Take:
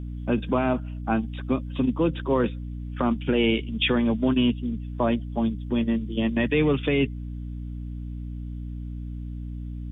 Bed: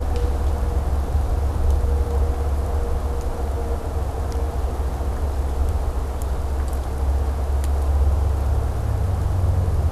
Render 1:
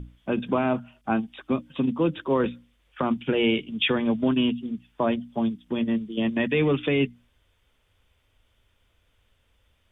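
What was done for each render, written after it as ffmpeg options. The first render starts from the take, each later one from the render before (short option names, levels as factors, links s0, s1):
-af "bandreject=f=60:t=h:w=6,bandreject=f=120:t=h:w=6,bandreject=f=180:t=h:w=6,bandreject=f=240:t=h:w=6,bandreject=f=300:t=h:w=6"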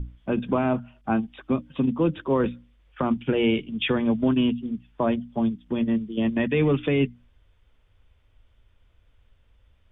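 -af "lowpass=f=2700:p=1,lowshelf=f=92:g=10.5"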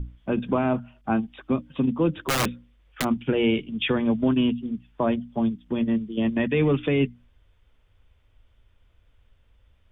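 -filter_complex "[0:a]asplit=3[s0][s1][s2];[s0]afade=t=out:st=2.19:d=0.02[s3];[s1]aeval=exprs='(mod(7.5*val(0)+1,2)-1)/7.5':c=same,afade=t=in:st=2.19:d=0.02,afade=t=out:st=3.03:d=0.02[s4];[s2]afade=t=in:st=3.03:d=0.02[s5];[s3][s4][s5]amix=inputs=3:normalize=0"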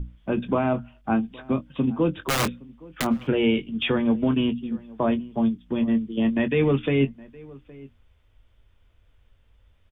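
-filter_complex "[0:a]asplit=2[s0][s1];[s1]adelay=22,volume=0.266[s2];[s0][s2]amix=inputs=2:normalize=0,asplit=2[s3][s4];[s4]adelay=816.3,volume=0.0794,highshelf=f=4000:g=-18.4[s5];[s3][s5]amix=inputs=2:normalize=0"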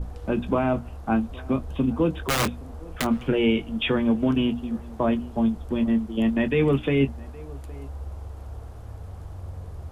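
-filter_complex "[1:a]volume=0.141[s0];[0:a][s0]amix=inputs=2:normalize=0"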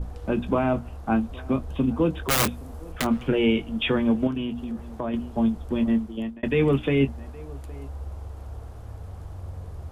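-filter_complex "[0:a]asettb=1/sr,asplit=3[s0][s1][s2];[s0]atrim=end=2.314[s3];[s1]atrim=start=2.31:end=2.92,asetpts=PTS-STARTPTS,afade=t=in:d=0.004:c=qsin,afade=t=out:st=0.606:d=0.004:c=qsin,highshelf=f=8500:g=10.5[s4];[s2]atrim=start=2.916[s5];[s3][s4]acrossfade=d=0.004:c1=hsin:c2=qsin[s6];[s6][s5]acrossfade=d=0.004:c1=qsin:c2=hsin,asettb=1/sr,asplit=3[s7][s8][s9];[s7]atrim=end=4.274[s10];[s8]atrim=start=4.27:end=5.14,asetpts=PTS-STARTPTS,afade=t=in:d=0.004:c=qsin,afade=t=out:st=0.866:d=0.004:c=qsin,acompressor=threshold=0.0398:ratio=2.5:attack=3.2:release=140:knee=1:detection=peak[s11];[s9]atrim=start=5.136[s12];[s10][s11]acrossfade=d=0.004:c1=hsin:c2=qsin[s13];[s13][s12]acrossfade=d=0.004:c1=qsin:c2=hsin,asplit=2[s14][s15];[s14]atrim=end=6.43,asetpts=PTS-STARTPTS,afade=t=out:st=5.95:d=0.48[s16];[s15]atrim=start=6.43,asetpts=PTS-STARTPTS,afade=t=in:d=0.004:c=hsin[s17];[s16][s17]concat=n=2:v=0:a=1"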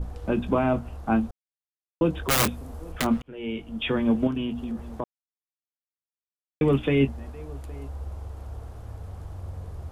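-filter_complex "[0:a]asplit=6[s0][s1][s2][s3][s4][s5];[s0]atrim=end=1.31,asetpts=PTS-STARTPTS,afade=t=out:st=1.306:d=0.004:c=hsin[s6];[s1]atrim=start=1.31:end=2.01,asetpts=PTS-STARTPTS,volume=0[s7];[s2]atrim=start=2.01:end=3.22,asetpts=PTS-STARTPTS,afade=t=in:d=0.004:c=hsin,afade=t=out:st=1.206:d=0.004:c=hsin[s8];[s3]atrim=start=3.22:end=5.04,asetpts=PTS-STARTPTS,afade=t=in:d=0.93,afade=t=out:st=1.816:d=0.004:c=hsin[s9];[s4]atrim=start=5.04:end=6.61,asetpts=PTS-STARTPTS,volume=0[s10];[s5]atrim=start=6.61,asetpts=PTS-STARTPTS,afade=t=in:d=0.004:c=hsin[s11];[s6][s7][s8][s9][s10][s11]concat=n=6:v=0:a=1"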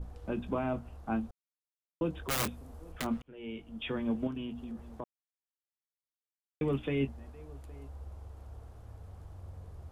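-af "volume=0.316"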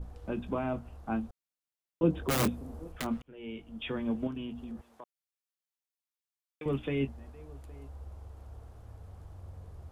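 -filter_complex "[0:a]asettb=1/sr,asplit=3[s0][s1][s2];[s0]atrim=end=2.034[s3];[s1]atrim=start=2.03:end=2.88,asetpts=PTS-STARTPTS,afade=t=in:d=0.004:c=qsin,afade=t=out:st=0.846:d=0.004:c=qsin,equalizer=f=240:t=o:w=2.9:g=9.5[s4];[s2]atrim=start=2.876[s5];[s3][s4]acrossfade=d=0.004:c1=hsin:c2=qsin[s6];[s6][s5]acrossfade=d=0.004:c1=qsin:c2=hsin,asettb=1/sr,asplit=3[s7][s8][s9];[s7]atrim=end=4.814[s10];[s8]atrim=start=4.81:end=6.66,asetpts=PTS-STARTPTS,afade=t=in:d=0.004:c=qsin,afade=t=out:st=1.846:d=0.004:c=qsin,highpass=f=1200:p=1[s11];[s9]atrim=start=6.656[s12];[s10][s11]acrossfade=d=0.004:c1=hsin:c2=qsin[s13];[s13][s12]acrossfade=d=0.004:c1=qsin:c2=hsin"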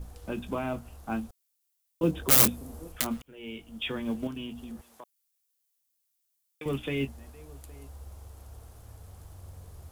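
-af "crystalizer=i=4:c=0,acrusher=bits=8:mode=log:mix=0:aa=0.000001"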